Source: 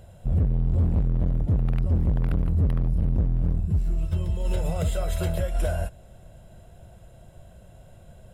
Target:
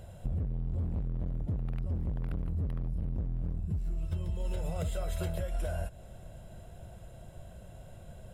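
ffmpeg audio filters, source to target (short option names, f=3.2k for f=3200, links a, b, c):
-af "acompressor=threshold=-30dB:ratio=6"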